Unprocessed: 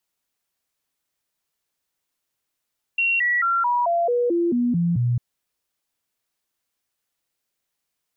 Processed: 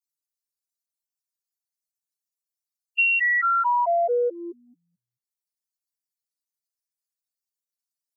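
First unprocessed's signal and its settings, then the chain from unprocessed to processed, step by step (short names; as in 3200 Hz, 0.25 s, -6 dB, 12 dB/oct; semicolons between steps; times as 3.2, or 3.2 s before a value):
stepped sine 2740 Hz down, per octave 2, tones 10, 0.22 s, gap 0.00 s -17.5 dBFS
per-bin expansion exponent 3; steep high-pass 420 Hz 36 dB/oct; transient shaper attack +4 dB, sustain -7 dB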